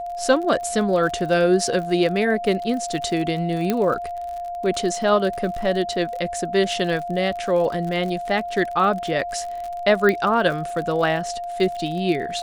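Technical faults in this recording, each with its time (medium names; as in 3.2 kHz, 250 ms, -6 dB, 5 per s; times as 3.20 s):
crackle 52 per s -29 dBFS
whine 700 Hz -27 dBFS
3.70 s: pop -8 dBFS
10.09 s: pop -9 dBFS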